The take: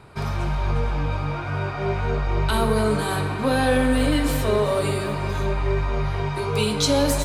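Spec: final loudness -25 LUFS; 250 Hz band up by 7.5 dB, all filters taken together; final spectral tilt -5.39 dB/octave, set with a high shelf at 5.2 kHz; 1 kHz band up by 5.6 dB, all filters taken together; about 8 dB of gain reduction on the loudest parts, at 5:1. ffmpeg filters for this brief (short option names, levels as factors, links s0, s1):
-af "equalizer=f=250:t=o:g=8.5,equalizer=f=1000:t=o:g=6,highshelf=f=5200:g=8,acompressor=threshold=0.112:ratio=5,volume=0.841"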